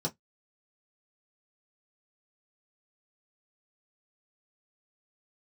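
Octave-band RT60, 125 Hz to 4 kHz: 0.15 s, 0.15 s, 0.10 s, 0.10 s, 0.10 s, 0.10 s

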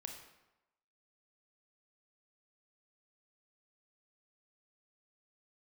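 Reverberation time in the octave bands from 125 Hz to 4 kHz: 0.85 s, 0.90 s, 0.95 s, 1.0 s, 0.85 s, 0.70 s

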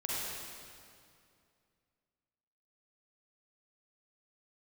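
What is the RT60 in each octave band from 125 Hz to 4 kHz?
2.8 s, 2.7 s, 2.5 s, 2.3 s, 2.1 s, 2.0 s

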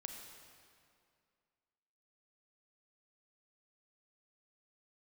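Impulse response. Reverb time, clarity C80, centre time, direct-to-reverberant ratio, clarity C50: 2.3 s, 4.5 dB, 64 ms, 3.0 dB, 4.0 dB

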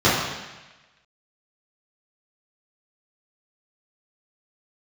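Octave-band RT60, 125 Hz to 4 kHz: 1.1 s, 1.1 s, 1.1 s, 1.1 s, 1.3 s, 1.2 s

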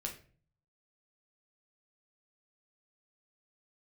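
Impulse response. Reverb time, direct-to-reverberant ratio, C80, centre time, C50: 0.40 s, 0.5 dB, 14.5 dB, 17 ms, 9.5 dB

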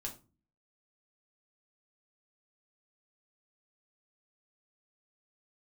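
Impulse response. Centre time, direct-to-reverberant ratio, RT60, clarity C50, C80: 16 ms, -0.5 dB, 0.35 s, 12.0 dB, 18.0 dB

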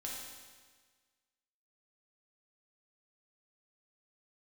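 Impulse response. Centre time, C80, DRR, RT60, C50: 83 ms, 2.5 dB, -4.0 dB, 1.5 s, 0.0 dB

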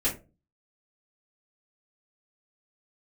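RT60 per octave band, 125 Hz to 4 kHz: 0.50 s, 0.45 s, 0.35 s, 0.25 s, 0.20 s, 0.15 s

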